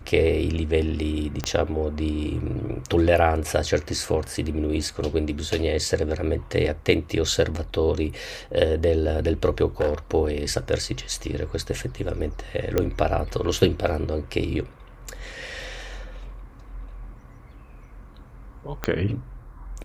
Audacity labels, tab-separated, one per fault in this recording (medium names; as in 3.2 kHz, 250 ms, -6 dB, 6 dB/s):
1.440000	1.440000	pop -11 dBFS
9.800000	9.940000	clipped -16.5 dBFS
12.780000	12.780000	pop -8 dBFS
18.840000	18.840000	pop -10 dBFS